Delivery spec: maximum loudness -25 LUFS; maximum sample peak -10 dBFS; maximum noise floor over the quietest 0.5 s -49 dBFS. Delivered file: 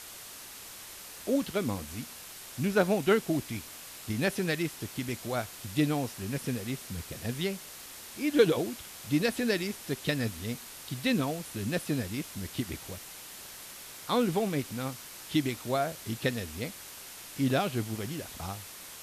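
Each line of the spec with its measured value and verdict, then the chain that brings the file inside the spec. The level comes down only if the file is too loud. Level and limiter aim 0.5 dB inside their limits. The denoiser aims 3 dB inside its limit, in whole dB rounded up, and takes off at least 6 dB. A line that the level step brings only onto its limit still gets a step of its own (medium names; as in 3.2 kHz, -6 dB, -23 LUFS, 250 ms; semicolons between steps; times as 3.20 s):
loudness -32.0 LUFS: pass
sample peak -11.0 dBFS: pass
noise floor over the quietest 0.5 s -46 dBFS: fail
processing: noise reduction 6 dB, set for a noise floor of -46 dBFS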